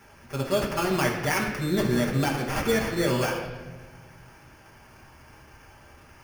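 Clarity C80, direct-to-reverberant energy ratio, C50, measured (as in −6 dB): 6.5 dB, −4.5 dB, 4.5 dB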